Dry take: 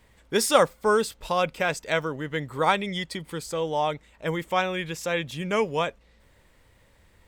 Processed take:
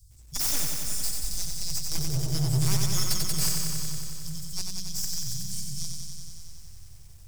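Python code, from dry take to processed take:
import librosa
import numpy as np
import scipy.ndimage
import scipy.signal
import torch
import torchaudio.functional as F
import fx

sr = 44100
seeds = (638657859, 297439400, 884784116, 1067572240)

p1 = fx.tracing_dist(x, sr, depth_ms=0.21)
p2 = scipy.signal.sosfilt(scipy.signal.cheby1(4, 1.0, [120.0, 5100.0], 'bandstop', fs=sr, output='sos'), p1)
p3 = fx.leveller(p2, sr, passes=3, at=(1.95, 3.49))
p4 = np.clip(10.0 ** (32.5 / 20.0) * p3, -1.0, 1.0) / 10.0 ** (32.5 / 20.0)
p5 = p4 + fx.echo_filtered(p4, sr, ms=320, feedback_pct=72, hz=1600.0, wet_db=-18.5, dry=0)
p6 = fx.echo_crushed(p5, sr, ms=92, feedback_pct=80, bits=11, wet_db=-4.0)
y = p6 * librosa.db_to_amplitude(8.5)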